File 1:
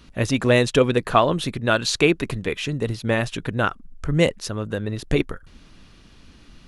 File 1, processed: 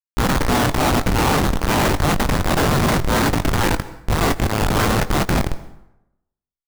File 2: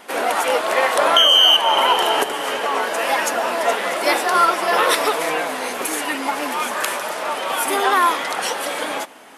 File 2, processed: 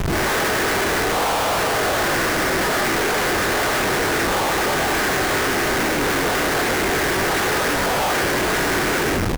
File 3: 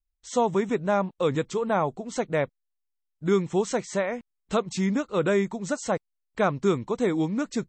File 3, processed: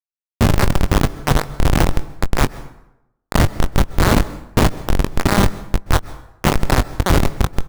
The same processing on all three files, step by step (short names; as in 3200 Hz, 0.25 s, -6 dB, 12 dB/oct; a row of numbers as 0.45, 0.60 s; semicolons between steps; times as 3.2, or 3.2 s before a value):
per-bin compression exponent 0.4; HPF 410 Hz 12 dB/oct; spectral gate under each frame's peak -10 dB weak; LPF 2000 Hz 24 dB/oct; dynamic EQ 760 Hz, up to +7 dB, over -27 dBFS, Q 1.5; vocal rider within 3 dB 0.5 s; transient shaper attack -9 dB, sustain +8 dB; sample leveller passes 1; Schmitt trigger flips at -21 dBFS; doubler 21 ms -12 dB; plate-style reverb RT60 0.86 s, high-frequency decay 0.65×, pre-delay 0.115 s, DRR 17.5 dB; match loudness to -19 LUFS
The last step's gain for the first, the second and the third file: +7.5, -3.5, +19.5 dB